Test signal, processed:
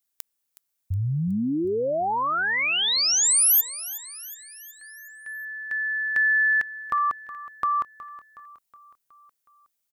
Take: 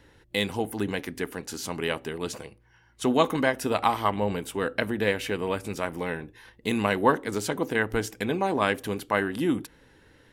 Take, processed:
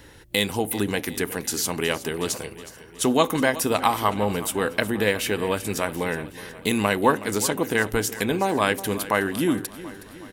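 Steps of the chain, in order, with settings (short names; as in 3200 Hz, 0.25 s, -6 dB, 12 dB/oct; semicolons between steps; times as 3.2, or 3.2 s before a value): high shelf 6300 Hz +11.5 dB; in parallel at +3 dB: compressor, threshold -34 dBFS; on the sum: feedback echo 0.368 s, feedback 55%, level -16 dB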